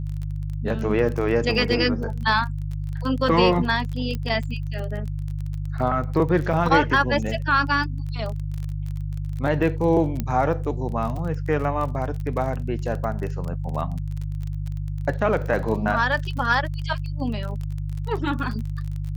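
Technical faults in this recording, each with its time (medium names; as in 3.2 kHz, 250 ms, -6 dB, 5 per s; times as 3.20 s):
crackle 26 per s -29 dBFS
hum 50 Hz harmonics 3 -28 dBFS
4.15 s: pop -17 dBFS
6.53 s: dropout 4.4 ms
10.20 s: pop -12 dBFS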